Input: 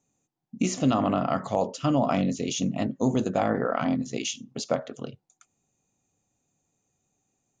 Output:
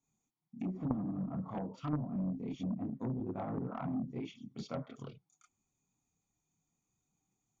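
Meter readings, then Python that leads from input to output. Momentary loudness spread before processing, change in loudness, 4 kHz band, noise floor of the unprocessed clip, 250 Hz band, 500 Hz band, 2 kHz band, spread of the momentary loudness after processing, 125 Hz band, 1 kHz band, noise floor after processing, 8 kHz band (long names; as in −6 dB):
8 LU, −12.5 dB, −22.0 dB, −79 dBFS, −10.5 dB, −17.5 dB, −20.5 dB, 10 LU, −8.0 dB, −17.0 dB, below −85 dBFS, below −30 dB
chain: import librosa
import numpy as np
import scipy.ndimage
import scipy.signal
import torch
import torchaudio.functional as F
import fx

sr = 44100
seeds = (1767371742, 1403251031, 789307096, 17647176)

y = x + 0.58 * np.pad(x, (int(0.9 * sr / 1000.0), 0))[:len(x)]
y = fx.chorus_voices(y, sr, voices=4, hz=0.87, base_ms=29, depth_ms=3.8, mix_pct=60)
y = fx.env_lowpass_down(y, sr, base_hz=320.0, full_db=-23.0)
y = fx.cheby_harmonics(y, sr, harmonics=(3, 5, 7), levels_db=(-6, -13, -31), full_scale_db=-14.5)
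y = F.gain(torch.from_numpy(y), 1.0).numpy()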